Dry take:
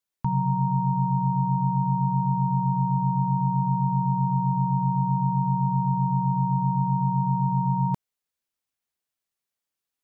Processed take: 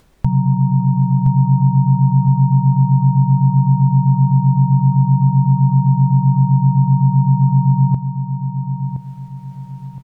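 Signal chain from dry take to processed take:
spectral tilt −4.5 dB per octave
upward compression, threshold −23 dBFS
on a send: repeating echo 1,018 ms, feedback 35%, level −8.5 dB
on the sum: level −2 dB

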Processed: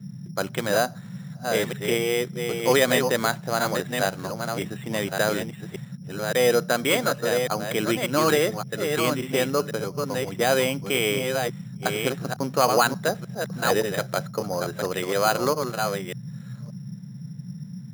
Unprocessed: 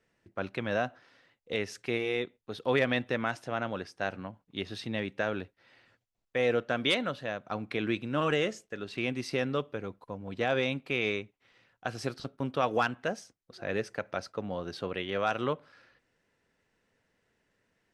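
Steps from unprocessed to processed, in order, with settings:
delay that plays each chunk backwards 576 ms, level −5 dB
bass and treble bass −9 dB, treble −10 dB
noise in a band 120–200 Hz −45 dBFS
bad sample-rate conversion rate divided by 8×, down filtered, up hold
level +8.5 dB

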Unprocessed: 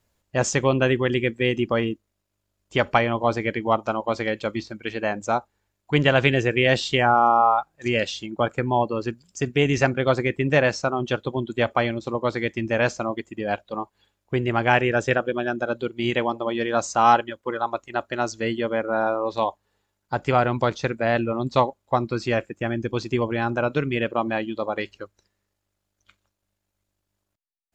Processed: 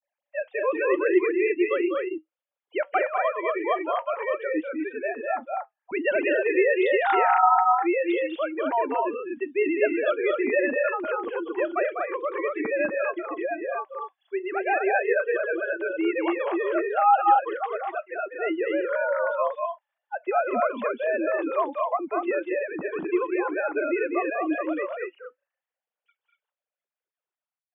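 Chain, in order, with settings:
three sine waves on the formant tracks
flanger 0.82 Hz, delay 3.3 ms, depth 2 ms, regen −76%
loudspeakers that aren't time-aligned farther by 68 metres −6 dB, 81 metres −3 dB

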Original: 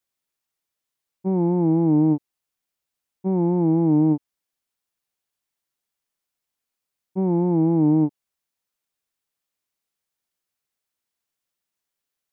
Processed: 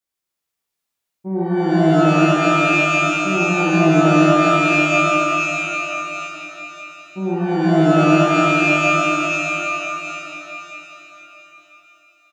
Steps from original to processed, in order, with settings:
slap from a distant wall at 83 metres, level −7 dB
reverb with rising layers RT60 3.5 s, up +12 semitones, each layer −2 dB, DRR −6.5 dB
level −4.5 dB

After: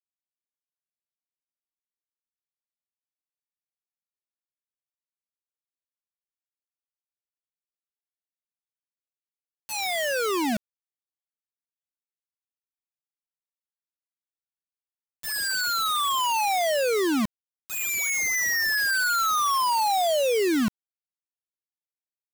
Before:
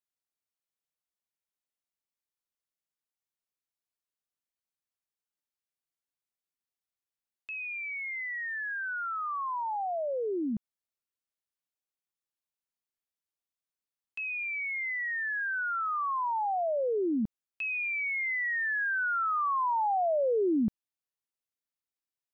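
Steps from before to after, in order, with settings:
bit reduction 5 bits
level +3 dB

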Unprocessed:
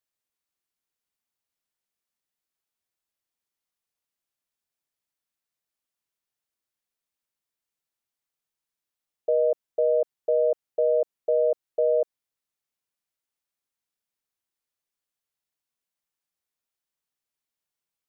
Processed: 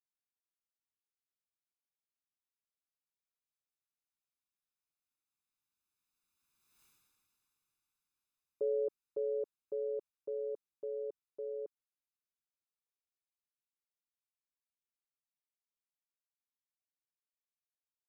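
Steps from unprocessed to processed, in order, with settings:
source passing by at 0:06.84, 38 m/s, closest 4 metres
comb filter 0.8 ms, depth 68%
level +16.5 dB

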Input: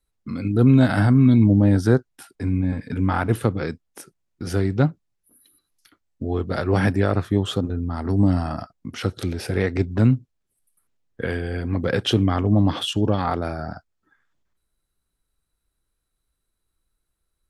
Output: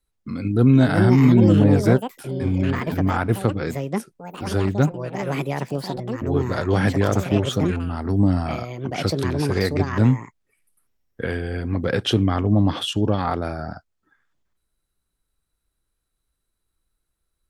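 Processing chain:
delay with pitch and tempo change per echo 545 ms, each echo +6 semitones, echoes 2, each echo −6 dB

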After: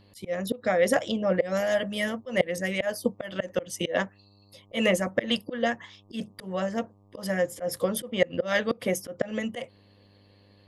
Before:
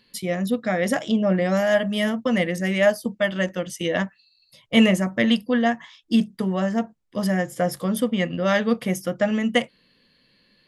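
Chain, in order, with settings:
parametric band 520 Hz +12.5 dB 0.28 octaves
hum with harmonics 100 Hz, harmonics 12, −51 dBFS −7 dB per octave
volume swells 148 ms
harmonic and percussive parts rebalanced harmonic −9 dB

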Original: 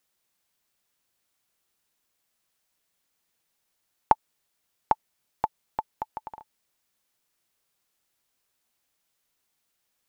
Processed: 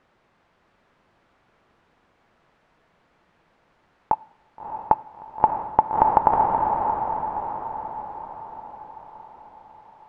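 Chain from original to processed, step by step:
low-pass filter 1,400 Hz 12 dB per octave
compressor whose output falls as the input rises −25 dBFS, ratio −0.5
feedback delay with all-pass diffusion 637 ms, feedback 51%, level −7 dB
on a send at −16.5 dB: convolution reverb RT60 1.1 s, pre-delay 3 ms
on the sum: boost into a limiter +20 dB
level −1 dB

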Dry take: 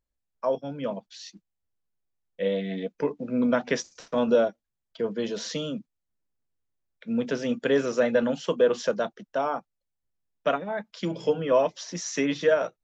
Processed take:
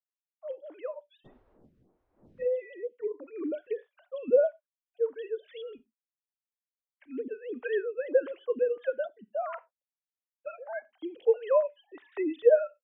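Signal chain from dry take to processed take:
three sine waves on the formant tracks
0:01.24–0:02.44: wind on the microphone 350 Hz −53 dBFS
on a send at −19.5 dB: convolution reverb, pre-delay 30 ms
on the sum: phaser with staggered stages 1.6 Hz
level −1 dB

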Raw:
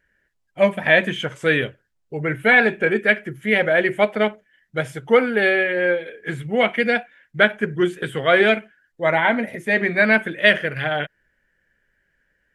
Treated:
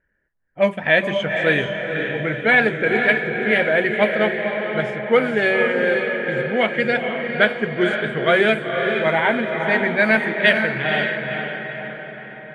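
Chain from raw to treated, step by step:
feedback delay with all-pass diffusion 497 ms, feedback 55%, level −4.5 dB
low-pass that shuts in the quiet parts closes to 1,500 Hz, open at −10.5 dBFS
level −1 dB

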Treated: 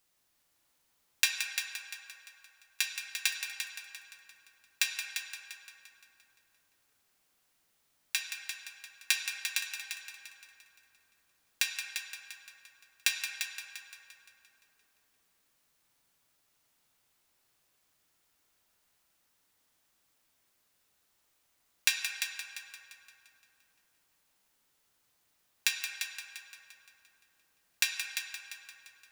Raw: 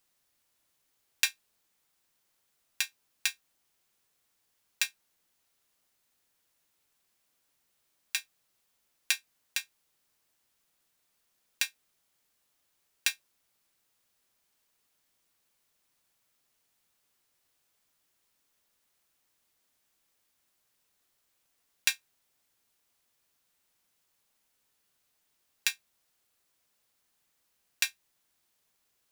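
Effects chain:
0:01.29–0:02.84: parametric band 230 Hz −12 dB 1.7 octaves
echo machine with several playback heads 173 ms, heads first and second, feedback 43%, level −9.5 dB
on a send at −3 dB: convolution reverb RT60 2.9 s, pre-delay 13 ms

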